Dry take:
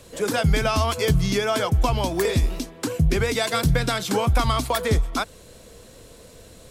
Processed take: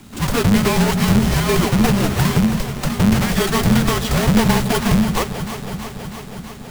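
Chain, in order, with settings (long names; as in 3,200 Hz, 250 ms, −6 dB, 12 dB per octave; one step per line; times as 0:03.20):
each half-wave held at its own peak
delay that swaps between a low-pass and a high-pass 162 ms, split 1,000 Hz, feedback 86%, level −9 dB
frequency shifter −260 Hz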